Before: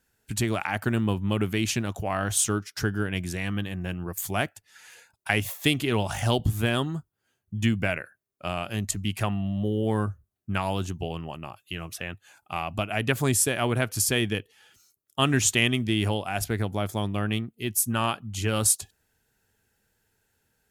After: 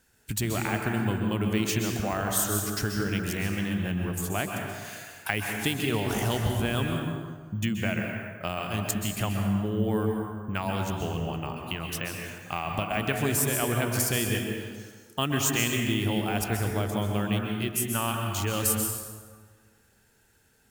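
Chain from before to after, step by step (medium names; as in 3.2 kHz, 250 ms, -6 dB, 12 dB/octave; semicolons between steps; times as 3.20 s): treble shelf 11 kHz +10.5 dB; compression 2:1, threshold -39 dBFS, peak gain reduction 14 dB; plate-style reverb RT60 1.6 s, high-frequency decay 0.6×, pre-delay 115 ms, DRR 1.5 dB; careless resampling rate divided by 2×, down filtered, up hold; trim +5.5 dB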